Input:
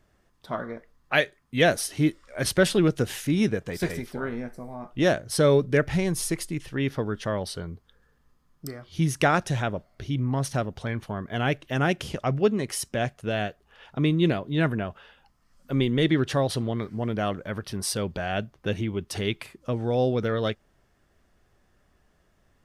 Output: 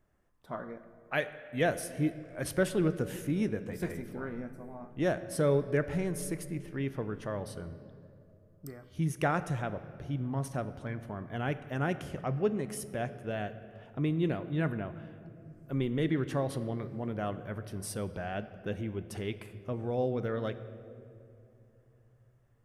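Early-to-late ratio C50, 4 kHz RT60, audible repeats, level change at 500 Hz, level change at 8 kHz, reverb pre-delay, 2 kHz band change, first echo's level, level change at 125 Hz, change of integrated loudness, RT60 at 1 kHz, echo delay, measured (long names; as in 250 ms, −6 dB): 13.0 dB, 1.6 s, no echo audible, −7.5 dB, −10.5 dB, 6 ms, −9.5 dB, no echo audible, −7.0 dB, −7.5 dB, 2.3 s, no echo audible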